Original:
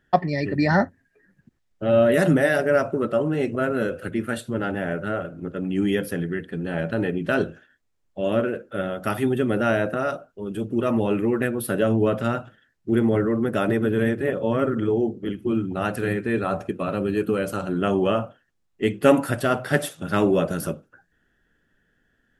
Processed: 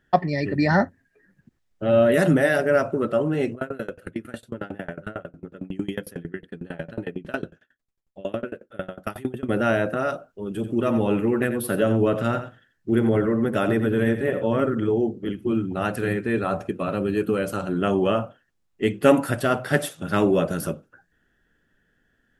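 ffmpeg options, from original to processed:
ffmpeg -i in.wav -filter_complex "[0:a]asettb=1/sr,asplit=3[link_01][link_02][link_03];[link_01]atrim=end=3.524[link_04];[link_02]atrim=start=3.52:end=9.49,asetpts=PTS-STARTPTS,afade=type=in:duration=0.004:curve=qsin,afade=type=out:start_time=5.966:duration=0.004:curve=qsin,aeval=exprs='val(0)*pow(10,-26*if(lt(mod(11*n/s,1),2*abs(11)/1000),1-mod(11*n/s,1)/(2*abs(11)/1000),(mod(11*n/s,1)-2*abs(11)/1000)/(1-2*abs(11)/1000))/20)':channel_layout=same[link_05];[link_03]atrim=start=9.486[link_06];[link_04][link_05]acrossfade=duration=0.004:curve1=hsin:curve2=qsin[link_07];[link_07][link_06]acrossfade=duration=0.004:curve1=qsin:curve2=hsin,asettb=1/sr,asplit=3[link_08][link_09][link_10];[link_08]atrim=end=10.484[link_11];[link_09]atrim=start=10.48:end=14.61,asetpts=PTS-STARTPTS,afade=type=in:duration=0.004:curve=qsin,afade=type=out:start_time=4.126:duration=0.004:curve=qsin,aecho=1:1:88:0.282,atrim=end_sample=182133[link_12];[link_10]atrim=start=14.606[link_13];[link_11][link_12]acrossfade=duration=0.004:curve1=hsin:curve2=qsin[link_14];[link_14][link_13]acrossfade=duration=0.004:curve1=qsin:curve2=hsin" out.wav

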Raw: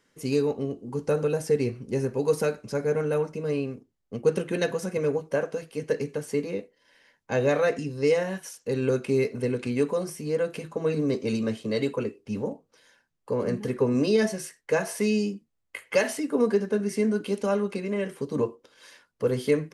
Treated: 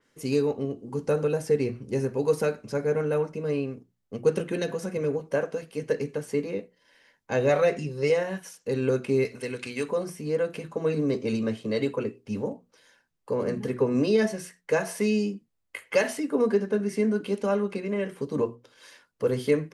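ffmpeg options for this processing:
ffmpeg -i in.wav -filter_complex "[0:a]asettb=1/sr,asplit=3[link_01][link_02][link_03];[link_01]atrim=end=4.404[link_04];[link_02]atrim=start=4.4:end=5.2,asetpts=PTS-STARTPTS,afade=type=in:duration=0.004:curve=qsin,afade=type=out:start_time=0.796:duration=0.004:curve=qsin,acrossover=split=460|3000[link_05][link_06][link_07];[link_06]acompressor=threshold=-32dB:ratio=6:attack=3.2:release=140:knee=2.83:detection=peak[link_08];[link_05][link_08][link_07]amix=inputs=3:normalize=0[link_09];[link_03]atrim=start=5.196[link_10];[link_04][link_09]acrossfade=duration=0.004:curve1=hsin:curve2=qsin[link_11];[link_11][link_10]acrossfade=duration=0.004:curve1=qsin:curve2=hsin,asettb=1/sr,asplit=3[link_12][link_13][link_14];[link_12]atrim=end=7.494[link_15];[link_13]atrim=start=7.49:end=8.1,asetpts=PTS-STARTPTS,afade=type=in:duration=0.004:curve=qsin,afade=type=out:start_time=0.606:duration=0.004:curve=qsin,aecho=1:1:5.4:0.65,atrim=end_sample=26901[link_16];[link_14]atrim=start=8.096[link_17];[link_15][link_16]acrossfade=duration=0.004:curve1=hsin:curve2=qsin[link_18];[link_18][link_17]acrossfade=duration=0.004:curve1=qsin:curve2=hsin,asettb=1/sr,asplit=3[link_19][link_20][link_21];[link_19]atrim=end=9.254[link_22];[link_20]atrim=start=9.25:end=9.89,asetpts=PTS-STARTPTS,afade=type=in:duration=0.004:curve=qsin,afade=type=out:start_time=0.636:duration=0.004:curve=qsin,tiltshelf=frequency=1300:gain=-8[link_23];[link_21]atrim=start=9.886[link_24];[link_22][link_23]acrossfade=duration=0.004:curve1=hsin:curve2=qsin[link_25];[link_25][link_24]acrossfade=duration=0.004:curve1=qsin:curve2=hsin,bandreject=frequency=60:width_type=h:width=6,bandreject=frequency=120:width_type=h:width=6,bandreject=frequency=180:width_type=h:width=6,bandreject=frequency=240:width_type=h:width=6,adynamicequalizer=threshold=0.00355:dfrequency=3800:dqfactor=0.7:tfrequency=3800:tqfactor=0.7:attack=5:release=100:ratio=0.375:range=2.5:mode=cutabove:tftype=highshelf" out.wav

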